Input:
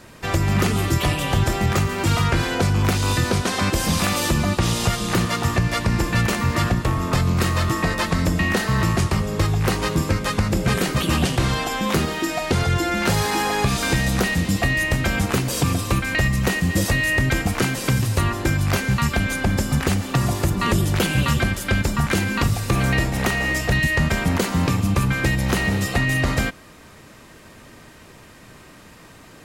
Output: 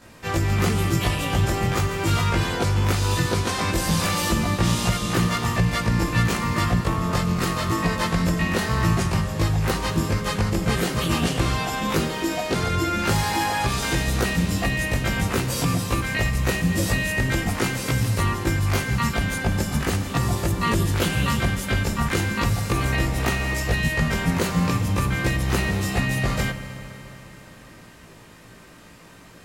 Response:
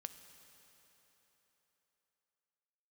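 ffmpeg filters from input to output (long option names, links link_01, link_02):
-filter_complex "[0:a]asplit=2[link_01][link_02];[1:a]atrim=start_sample=2205,adelay=18[link_03];[link_02][link_03]afir=irnorm=-1:irlink=0,volume=8.5dB[link_04];[link_01][link_04]amix=inputs=2:normalize=0,volume=-7.5dB"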